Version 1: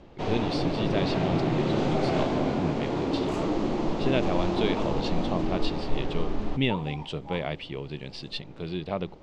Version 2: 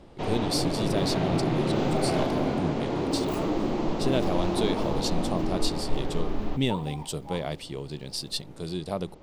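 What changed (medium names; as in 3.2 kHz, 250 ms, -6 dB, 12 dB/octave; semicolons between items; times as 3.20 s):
speech: remove resonant low-pass 2.6 kHz, resonance Q 2; master: remove low-pass 8.9 kHz 24 dB/octave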